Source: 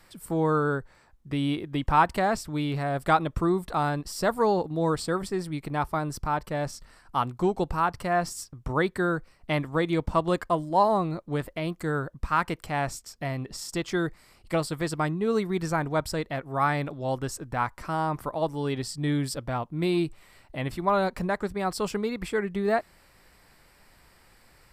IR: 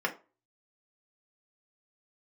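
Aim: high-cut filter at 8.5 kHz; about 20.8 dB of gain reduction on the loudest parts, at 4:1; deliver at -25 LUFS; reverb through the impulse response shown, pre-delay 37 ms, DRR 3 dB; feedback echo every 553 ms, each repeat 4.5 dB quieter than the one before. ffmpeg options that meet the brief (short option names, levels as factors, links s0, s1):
-filter_complex "[0:a]lowpass=8500,acompressor=threshold=0.00794:ratio=4,aecho=1:1:553|1106|1659|2212|2765|3318|3871|4424|4977:0.596|0.357|0.214|0.129|0.0772|0.0463|0.0278|0.0167|0.01,asplit=2[s0][s1];[1:a]atrim=start_sample=2205,adelay=37[s2];[s1][s2]afir=irnorm=-1:irlink=0,volume=0.251[s3];[s0][s3]amix=inputs=2:normalize=0,volume=5.96"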